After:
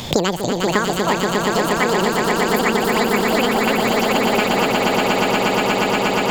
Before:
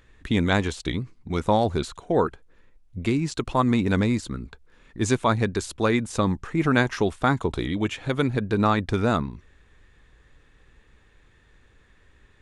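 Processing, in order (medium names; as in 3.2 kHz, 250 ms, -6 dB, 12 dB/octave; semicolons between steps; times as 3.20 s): wide varispeed 1.97×; echo with a slow build-up 119 ms, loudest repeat 8, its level -5.5 dB; three bands compressed up and down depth 100%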